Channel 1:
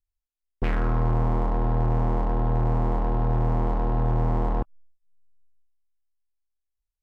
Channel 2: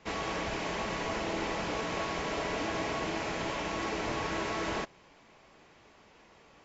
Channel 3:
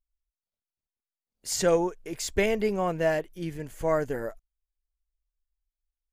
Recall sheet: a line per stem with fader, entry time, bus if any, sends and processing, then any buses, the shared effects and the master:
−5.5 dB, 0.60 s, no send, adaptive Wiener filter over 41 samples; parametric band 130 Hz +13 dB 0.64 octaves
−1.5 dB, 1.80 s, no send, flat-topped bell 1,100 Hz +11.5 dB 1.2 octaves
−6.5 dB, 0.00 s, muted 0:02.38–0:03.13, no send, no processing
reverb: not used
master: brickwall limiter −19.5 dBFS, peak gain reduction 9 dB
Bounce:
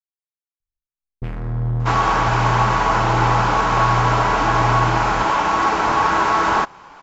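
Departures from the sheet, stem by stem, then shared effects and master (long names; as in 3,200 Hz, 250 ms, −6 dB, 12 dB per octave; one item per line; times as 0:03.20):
stem 2 −1.5 dB → +10.0 dB
stem 3: muted
master: missing brickwall limiter −19.5 dBFS, peak gain reduction 9 dB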